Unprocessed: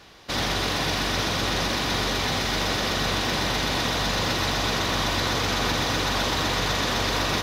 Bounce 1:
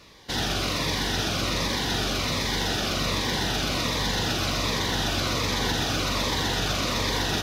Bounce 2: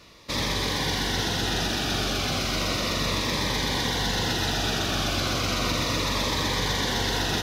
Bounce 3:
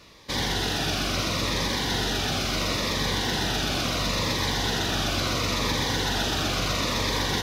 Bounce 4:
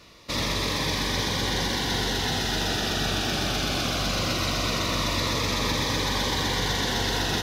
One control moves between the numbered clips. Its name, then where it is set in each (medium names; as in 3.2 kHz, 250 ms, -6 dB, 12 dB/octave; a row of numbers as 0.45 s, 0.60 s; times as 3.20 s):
Shepard-style phaser, rate: 1.3 Hz, 0.34 Hz, 0.73 Hz, 0.2 Hz